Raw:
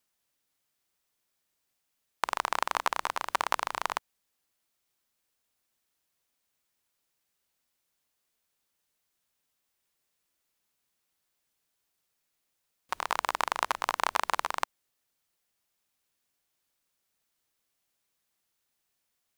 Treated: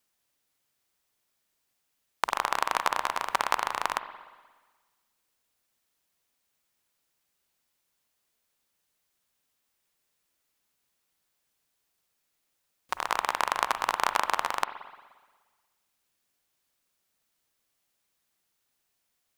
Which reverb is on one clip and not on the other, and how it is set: spring tank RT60 1.4 s, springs 43/59 ms, chirp 40 ms, DRR 10.5 dB; trim +2 dB

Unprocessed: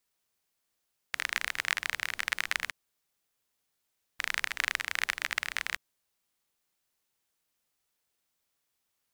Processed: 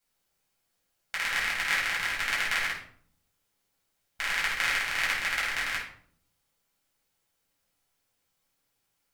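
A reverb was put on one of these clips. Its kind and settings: simulated room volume 700 m³, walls furnished, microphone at 7.6 m; trim -5 dB

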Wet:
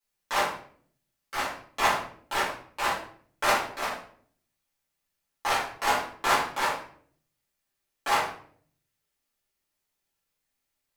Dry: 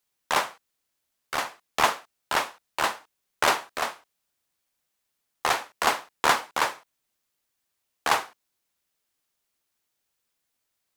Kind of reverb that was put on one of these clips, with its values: simulated room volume 63 m³, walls mixed, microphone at 2.3 m; trim -12 dB

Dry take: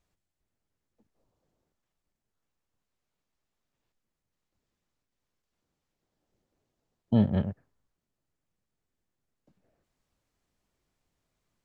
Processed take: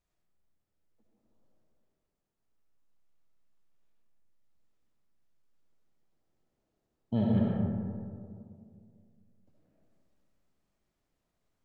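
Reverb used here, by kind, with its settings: algorithmic reverb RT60 2.3 s, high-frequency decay 0.3×, pre-delay 30 ms, DRR -3.5 dB; trim -7 dB

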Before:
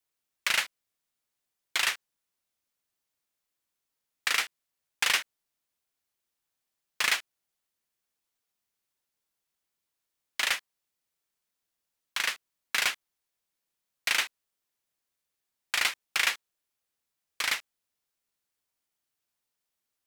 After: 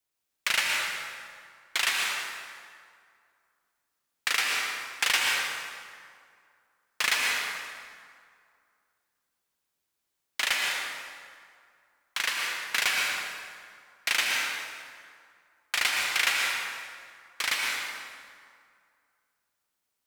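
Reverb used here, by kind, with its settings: plate-style reverb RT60 2.2 s, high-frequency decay 0.65×, pre-delay 105 ms, DRR -1.5 dB

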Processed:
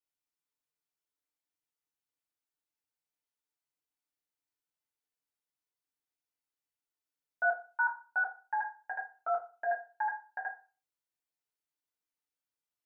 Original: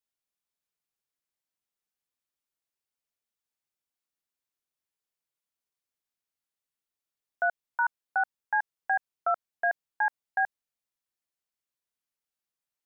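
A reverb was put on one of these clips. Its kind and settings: FDN reverb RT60 0.35 s, low-frequency decay 0.8×, high-frequency decay 0.65×, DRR -4 dB; trim -9 dB

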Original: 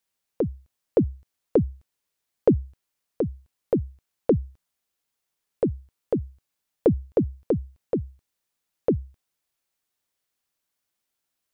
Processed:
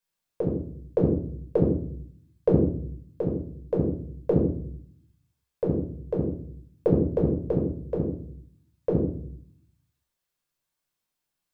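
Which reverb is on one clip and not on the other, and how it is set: simulated room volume 780 m³, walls furnished, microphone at 5.2 m; trim -8 dB

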